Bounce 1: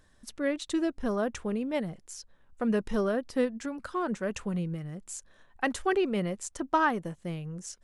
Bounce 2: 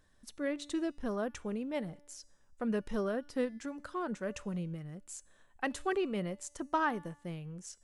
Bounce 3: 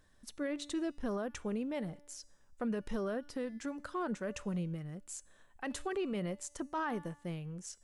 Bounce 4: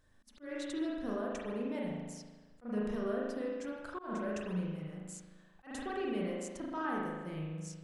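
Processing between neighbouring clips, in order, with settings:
resonator 290 Hz, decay 0.89 s, mix 50%
limiter -29.5 dBFS, peak gain reduction 11 dB; gain +1 dB
spring tank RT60 1.3 s, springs 38 ms, chirp 40 ms, DRR -3.5 dB; auto swell 0.171 s; gain -4.5 dB

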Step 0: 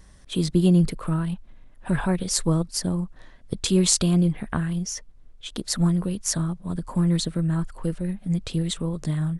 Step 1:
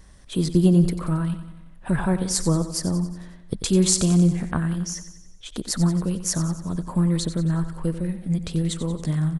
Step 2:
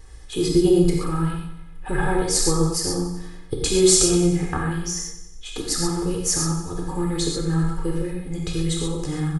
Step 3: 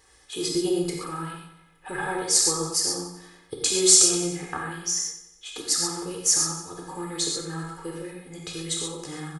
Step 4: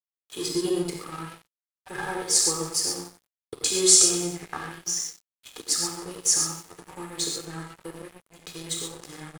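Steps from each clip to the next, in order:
dynamic EQ 3100 Hz, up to -5 dB, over -45 dBFS, Q 1.2; on a send: feedback echo 91 ms, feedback 55%, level -12 dB; on the sum: gain +1 dB
comb 2.4 ms, depth 95%; non-linear reverb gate 0.16 s flat, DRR -1.5 dB; gain -1.5 dB
HPF 620 Hz 6 dB/oct; dynamic EQ 6600 Hz, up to +5 dB, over -38 dBFS, Q 0.97; gain -2 dB
crossover distortion -38.5 dBFS

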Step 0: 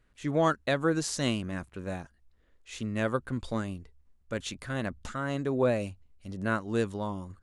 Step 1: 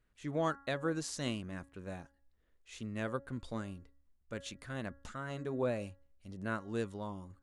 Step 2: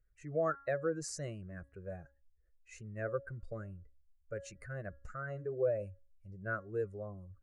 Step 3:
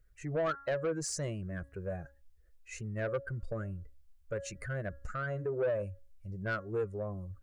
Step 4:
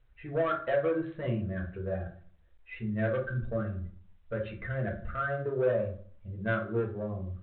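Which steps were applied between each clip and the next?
de-hum 277.4 Hz, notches 7; gain -8 dB
spectral contrast raised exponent 1.6; fixed phaser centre 930 Hz, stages 6; gain +3 dB
in parallel at 0 dB: compressor, threshold -43 dBFS, peak gain reduction 15 dB; on the sum: soft clip -28.5 dBFS, distortion -13 dB; gain +2.5 dB
reverb RT60 0.50 s, pre-delay 4 ms, DRR -1 dB; G.726 40 kbps 8000 Hz

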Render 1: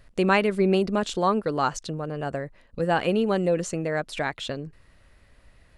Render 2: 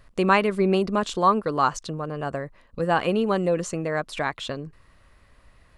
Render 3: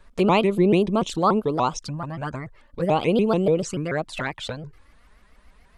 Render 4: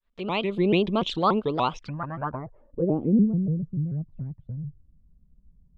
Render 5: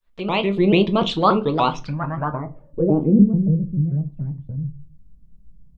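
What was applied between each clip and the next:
bell 1100 Hz +7.5 dB 0.41 oct
envelope flanger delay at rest 5 ms, full sweep at -20.5 dBFS; shaped vibrato saw up 6.9 Hz, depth 250 cents; gain +3.5 dB
opening faded in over 0.76 s; low-pass sweep 3500 Hz -> 150 Hz, 1.63–3.38; gain -3 dB
shoebox room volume 120 m³, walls furnished, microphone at 0.58 m; gain +5 dB

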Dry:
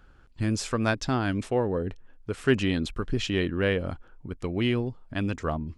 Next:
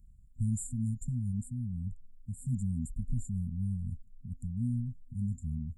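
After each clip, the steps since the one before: FFT band-reject 250–7000 Hz; bell 410 Hz -13.5 dB 1.6 oct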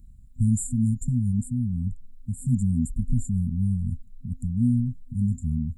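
small resonant body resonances 300/3900 Hz, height 14 dB, ringing for 60 ms; gain +8.5 dB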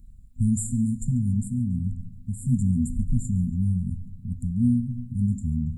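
thinning echo 0.14 s, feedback 54%, level -21.5 dB; on a send at -12 dB: reverb RT60 1.0 s, pre-delay 4 ms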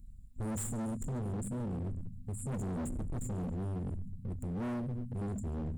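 overloaded stage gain 31 dB; gain -3.5 dB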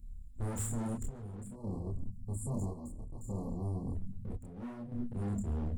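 chopper 0.61 Hz, depth 65%, duty 65%; chorus voices 6, 0.9 Hz, delay 28 ms, depth 2.4 ms; spectral delete 1.55–3.95, 1200–4000 Hz; gain +3 dB

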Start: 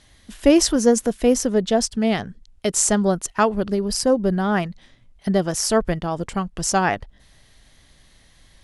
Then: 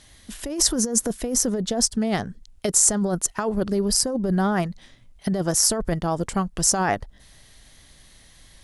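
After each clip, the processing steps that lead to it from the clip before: dynamic EQ 2800 Hz, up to -7 dB, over -43 dBFS, Q 1.4; negative-ratio compressor -21 dBFS, ratio -1; high shelf 6100 Hz +7.5 dB; gain -1.5 dB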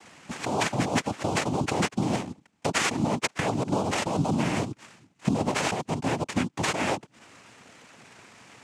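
compressor 5:1, threshold -26 dBFS, peak gain reduction 11.5 dB; sample-rate reducer 5600 Hz, jitter 0%; noise vocoder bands 4; gain +3 dB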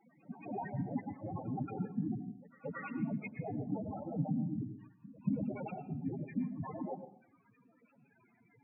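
loudest bins only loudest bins 4; pre-echo 0.229 s -20 dB; plate-style reverb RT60 0.53 s, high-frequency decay 0.7×, pre-delay 95 ms, DRR 11 dB; gain -6 dB

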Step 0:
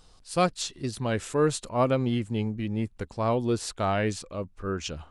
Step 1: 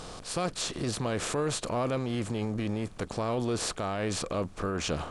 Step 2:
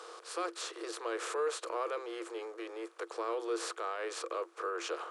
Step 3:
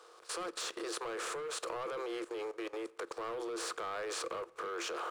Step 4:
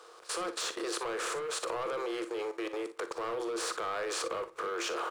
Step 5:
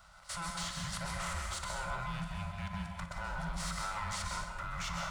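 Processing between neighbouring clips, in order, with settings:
per-bin compression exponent 0.6; limiter -21.5 dBFS, peak gain reduction 10.5 dB
rippled Chebyshev high-pass 330 Hz, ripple 9 dB
sample leveller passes 2; level quantiser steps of 19 dB; on a send at -19 dB: reverb RT60 1.2 s, pre-delay 6 ms; on the sum: gain -1 dB
early reflections 43 ms -15 dB, 58 ms -13.5 dB; gain +4 dB
band inversion scrambler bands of 500 Hz; plate-style reverb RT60 0.7 s, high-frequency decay 0.9×, pre-delay 0.115 s, DRR 2 dB; gain -5 dB

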